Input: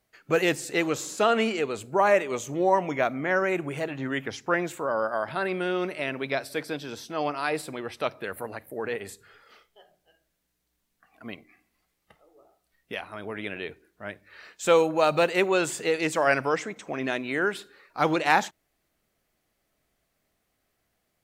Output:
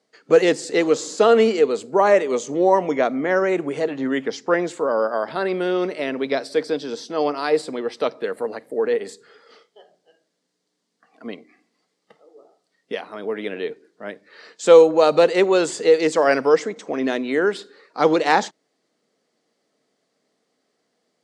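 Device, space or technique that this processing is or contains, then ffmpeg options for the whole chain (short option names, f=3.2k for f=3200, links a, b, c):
television speaker: -af "highpass=f=170:w=0.5412,highpass=f=170:w=1.3066,equalizer=f=260:t=q:w=4:g=5,equalizer=f=460:t=q:w=4:g=9,equalizer=f=1.5k:t=q:w=4:g=-3,equalizer=f=2.5k:t=q:w=4:g=-6,equalizer=f=4.7k:t=q:w=4:g=5,lowpass=f=8.3k:w=0.5412,lowpass=f=8.3k:w=1.3066,volume=4dB"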